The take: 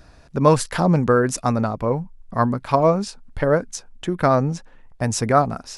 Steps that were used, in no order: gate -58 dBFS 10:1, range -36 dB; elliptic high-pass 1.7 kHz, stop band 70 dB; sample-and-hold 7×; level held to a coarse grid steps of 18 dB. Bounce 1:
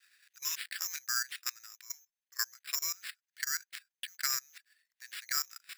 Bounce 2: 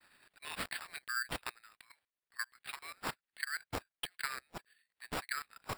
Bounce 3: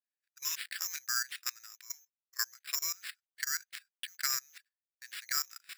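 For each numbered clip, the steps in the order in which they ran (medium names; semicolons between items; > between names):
gate > level held to a coarse grid > sample-and-hold > elliptic high-pass; level held to a coarse grid > gate > elliptic high-pass > sample-and-hold; level held to a coarse grid > sample-and-hold > elliptic high-pass > gate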